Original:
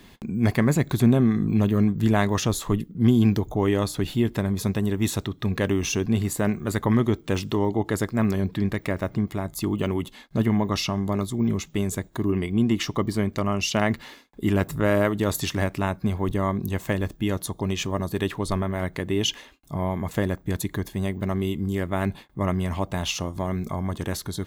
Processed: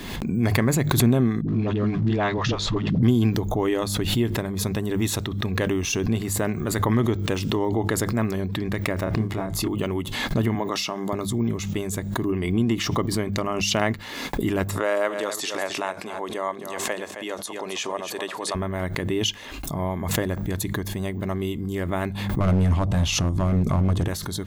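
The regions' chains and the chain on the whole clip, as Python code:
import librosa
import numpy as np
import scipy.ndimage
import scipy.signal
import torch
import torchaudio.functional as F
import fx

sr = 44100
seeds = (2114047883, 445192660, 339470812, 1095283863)

y = fx.chain(x, sr, fx.law_mismatch(coded='A'),
    fx.lowpass(hz=4900.0, slope=24),
    fx.dispersion(late='highs', ms=68.0, hz=350.0), at=(1.41, 3.03))
y = fx.chain(y, sr, fx.block_float(bits=7),
    fx.lowpass(hz=3200.0, slope=6),
    fx.doubler(ms=27.0, db=-2.5), at=(9.04, 9.68))
y = fx.chain(y, sr, fx.highpass(hz=290.0, slope=12),
    fx.peak_eq(hz=7500.0, db=3.0, octaves=0.26), at=(10.55, 11.13))
y = fx.chain(y, sr, fx.cheby1_bandpass(low_hz=540.0, high_hz=8900.0, order=2),
    fx.echo_single(ms=266, db=-11.5), at=(14.7, 18.55))
y = fx.chain(y, sr, fx.lowpass(hz=12000.0, slope=12),
    fx.low_shelf(hz=360.0, db=12.0),
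    fx.overload_stage(gain_db=14.0), at=(22.4, 24.08))
y = fx.hum_notches(y, sr, base_hz=50, count=4)
y = fx.dynamic_eq(y, sr, hz=210.0, q=4.3, threshold_db=-34.0, ratio=4.0, max_db=-4)
y = fx.pre_swell(y, sr, db_per_s=40.0)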